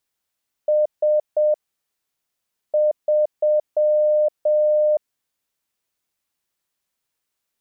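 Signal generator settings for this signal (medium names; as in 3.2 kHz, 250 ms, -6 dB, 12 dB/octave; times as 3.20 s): Morse "S 3" 7 wpm 605 Hz -14 dBFS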